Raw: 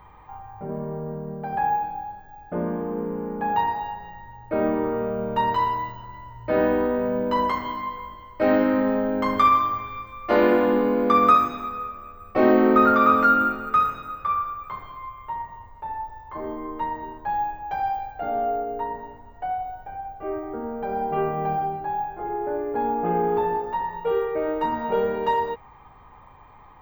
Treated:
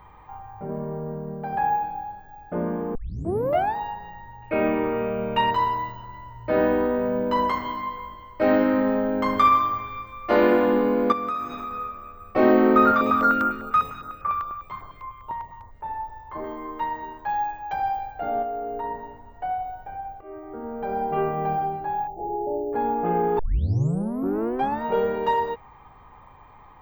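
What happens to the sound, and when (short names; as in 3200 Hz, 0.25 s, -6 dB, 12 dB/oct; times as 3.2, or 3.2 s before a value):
2.95 tape start 0.81 s
4.42–5.51 bell 2500 Hz +15 dB 0.55 oct
11.12–11.71 compressor 3:1, threshold -29 dBFS
12.91–15.84 stepped notch 10 Hz 360–3800 Hz
16.44–17.73 tilt shelf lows -4.5 dB, about 870 Hz
18.42–18.84 compressor, threshold -26 dBFS
20.21–20.88 fade in, from -15 dB
22.07–22.73 brick-wall FIR band-stop 890–5100 Hz
23.39 tape start 1.44 s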